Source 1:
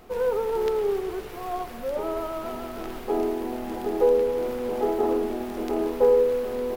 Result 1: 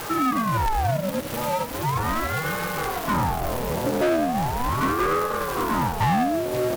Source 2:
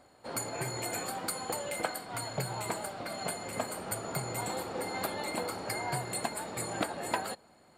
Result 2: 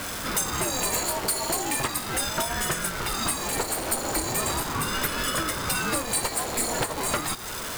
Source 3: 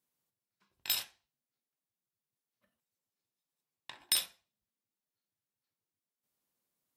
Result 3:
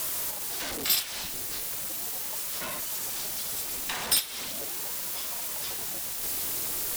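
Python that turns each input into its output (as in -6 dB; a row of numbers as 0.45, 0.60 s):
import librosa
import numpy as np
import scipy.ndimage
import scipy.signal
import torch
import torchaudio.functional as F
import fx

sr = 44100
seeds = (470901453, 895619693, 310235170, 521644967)

y = x + 0.5 * 10.0 ** (-34.0 / 20.0) * np.sign(x)
y = fx.transient(y, sr, attack_db=2, sustain_db=-10)
y = fx.high_shelf(y, sr, hz=4400.0, db=7.0)
y = 10.0 ** (-23.0 / 20.0) * np.tanh(y / 10.0 ** (-23.0 / 20.0))
y = fx.ring_lfo(y, sr, carrier_hz=480.0, swing_pct=75, hz=0.38)
y = y * librosa.db_to_amplitude(7.5)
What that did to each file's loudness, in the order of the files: +2.0, +9.5, +3.5 LU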